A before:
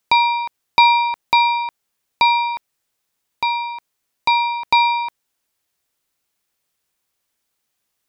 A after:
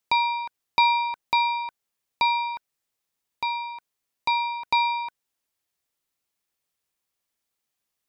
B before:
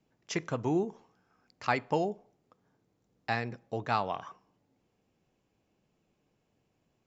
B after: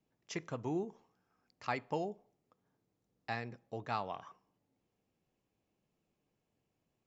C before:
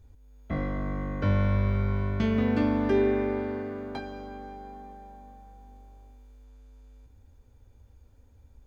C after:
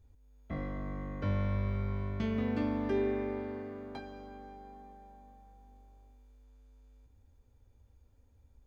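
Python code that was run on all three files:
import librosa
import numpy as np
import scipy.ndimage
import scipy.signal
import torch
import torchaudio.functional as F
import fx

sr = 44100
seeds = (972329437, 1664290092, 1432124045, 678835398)

y = fx.notch(x, sr, hz=1500.0, q=24.0)
y = F.gain(torch.from_numpy(y), -7.5).numpy()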